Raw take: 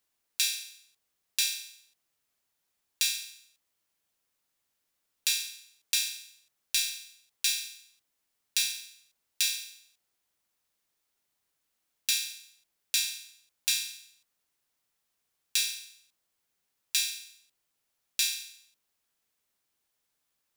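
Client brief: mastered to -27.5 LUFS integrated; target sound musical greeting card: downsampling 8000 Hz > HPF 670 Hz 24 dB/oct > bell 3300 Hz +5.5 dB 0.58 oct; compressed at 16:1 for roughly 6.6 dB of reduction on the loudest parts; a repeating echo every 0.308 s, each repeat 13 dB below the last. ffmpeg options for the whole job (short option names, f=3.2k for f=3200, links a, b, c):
-af "acompressor=threshold=-29dB:ratio=16,aecho=1:1:308|616|924:0.224|0.0493|0.0108,aresample=8000,aresample=44100,highpass=f=670:w=0.5412,highpass=f=670:w=1.3066,equalizer=f=3.3k:t=o:w=0.58:g=5.5,volume=13dB"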